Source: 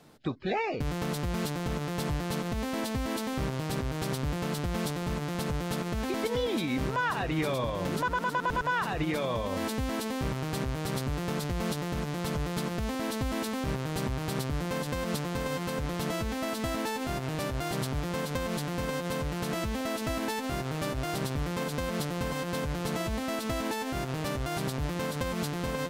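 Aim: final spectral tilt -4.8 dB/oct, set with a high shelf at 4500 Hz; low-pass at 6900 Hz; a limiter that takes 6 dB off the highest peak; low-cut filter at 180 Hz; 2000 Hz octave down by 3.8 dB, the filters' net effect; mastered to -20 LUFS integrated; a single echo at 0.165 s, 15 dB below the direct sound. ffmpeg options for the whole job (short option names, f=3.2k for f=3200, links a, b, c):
-af "highpass=180,lowpass=6.9k,equalizer=f=2k:t=o:g=-6,highshelf=f=4.5k:g=4,alimiter=limit=-24dB:level=0:latency=1,aecho=1:1:165:0.178,volume=15.5dB"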